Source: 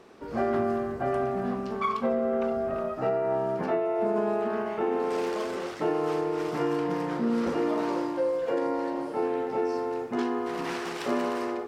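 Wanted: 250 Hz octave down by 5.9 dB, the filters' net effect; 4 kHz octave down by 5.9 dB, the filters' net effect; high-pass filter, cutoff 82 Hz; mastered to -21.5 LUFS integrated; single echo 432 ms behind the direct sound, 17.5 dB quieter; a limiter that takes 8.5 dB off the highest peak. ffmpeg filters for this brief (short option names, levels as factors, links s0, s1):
-af "highpass=82,equalizer=f=250:t=o:g=-8,equalizer=f=4000:t=o:g=-8.5,alimiter=level_in=1.19:limit=0.0631:level=0:latency=1,volume=0.841,aecho=1:1:432:0.133,volume=4.22"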